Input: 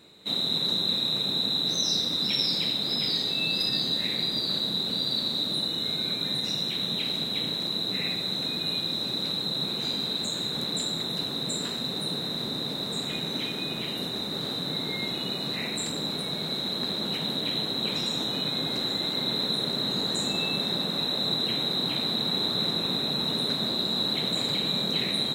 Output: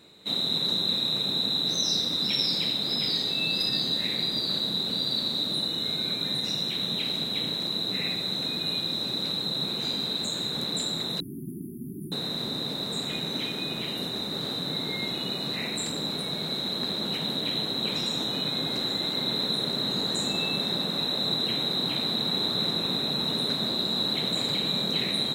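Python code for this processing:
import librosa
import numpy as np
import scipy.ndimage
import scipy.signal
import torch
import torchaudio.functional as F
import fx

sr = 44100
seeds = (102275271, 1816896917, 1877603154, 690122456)

y = fx.brickwall_bandstop(x, sr, low_hz=400.0, high_hz=9600.0, at=(11.2, 12.12))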